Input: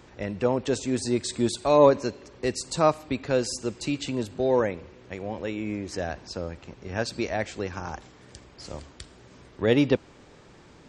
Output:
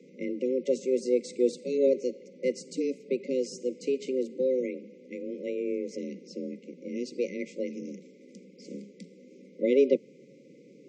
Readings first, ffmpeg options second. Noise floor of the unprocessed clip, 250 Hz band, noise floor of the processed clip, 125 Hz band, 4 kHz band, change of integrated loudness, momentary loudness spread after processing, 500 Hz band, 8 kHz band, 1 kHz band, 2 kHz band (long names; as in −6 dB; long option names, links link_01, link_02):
−52 dBFS, −4.0 dB, −54 dBFS, −18.0 dB, −12.0 dB, −3.5 dB, 17 LU, −2.0 dB, −11.0 dB, below −40 dB, −11.0 dB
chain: -af "lowpass=frequency=6200:width_type=q:width=2.1,highshelf=frequency=2100:width_type=q:width=1.5:gain=-14,afreqshift=130,afftfilt=real='re*(1-between(b*sr/4096,570,2000))':imag='im*(1-between(b*sr/4096,570,2000))':win_size=4096:overlap=0.75"